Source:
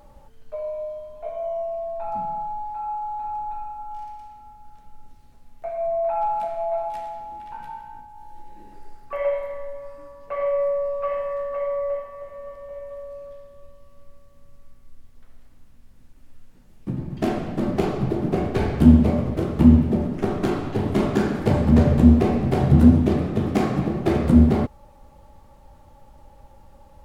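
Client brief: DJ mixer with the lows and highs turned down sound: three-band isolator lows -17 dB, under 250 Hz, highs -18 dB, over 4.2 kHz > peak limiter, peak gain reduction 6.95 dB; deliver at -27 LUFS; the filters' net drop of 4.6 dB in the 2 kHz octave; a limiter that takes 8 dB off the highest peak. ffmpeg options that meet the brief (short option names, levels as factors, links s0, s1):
-filter_complex "[0:a]equalizer=f=2000:t=o:g=-5.5,alimiter=limit=0.355:level=0:latency=1,acrossover=split=250 4200:gain=0.141 1 0.126[s0][s1][s2];[s0][s1][s2]amix=inputs=3:normalize=0,volume=1.26,alimiter=limit=0.158:level=0:latency=1"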